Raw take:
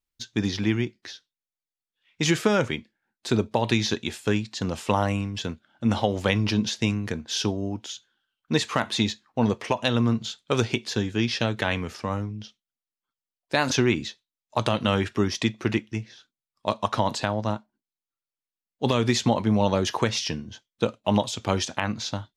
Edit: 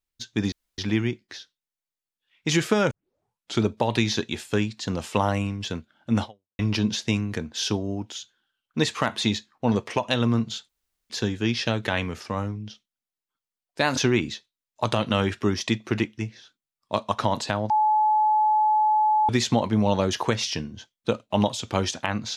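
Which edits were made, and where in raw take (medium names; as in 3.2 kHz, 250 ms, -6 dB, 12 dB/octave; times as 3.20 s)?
0.52 s: insert room tone 0.26 s
2.65 s: tape start 0.72 s
5.96–6.33 s: fade out exponential
10.43–10.84 s: room tone
17.44–19.03 s: bleep 857 Hz -17 dBFS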